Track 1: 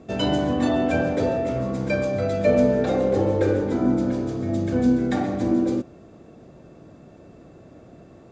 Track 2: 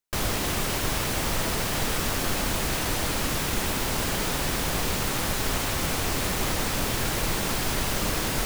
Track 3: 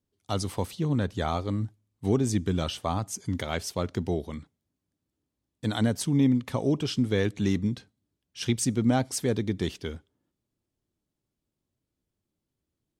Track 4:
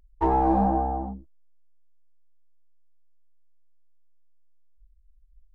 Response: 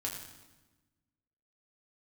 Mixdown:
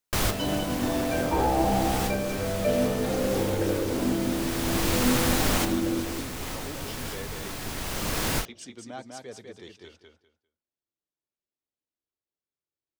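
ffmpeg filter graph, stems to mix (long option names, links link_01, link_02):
-filter_complex "[0:a]adelay=200,volume=-7dB,asplit=2[link_01][link_02];[link_02]volume=-6.5dB[link_03];[1:a]volume=1dB,asplit=2[link_04][link_05];[link_05]volume=-17.5dB[link_06];[2:a]acrossover=split=380 7600:gain=0.2 1 0.224[link_07][link_08][link_09];[link_07][link_08][link_09]amix=inputs=3:normalize=0,flanger=delay=1.4:depth=5.3:regen=-68:speed=0.32:shape=triangular,volume=-7dB,asplit=3[link_10][link_11][link_12];[link_11]volume=-4dB[link_13];[3:a]adelay=1100,volume=-3.5dB[link_14];[link_12]apad=whole_len=372701[link_15];[link_04][link_15]sidechaincompress=threshold=-55dB:ratio=8:attack=41:release=796[link_16];[4:a]atrim=start_sample=2205[link_17];[link_06][link_17]afir=irnorm=-1:irlink=0[link_18];[link_03][link_13]amix=inputs=2:normalize=0,aecho=0:1:199|398|597:1|0.2|0.04[link_19];[link_01][link_16][link_10][link_14][link_18][link_19]amix=inputs=6:normalize=0"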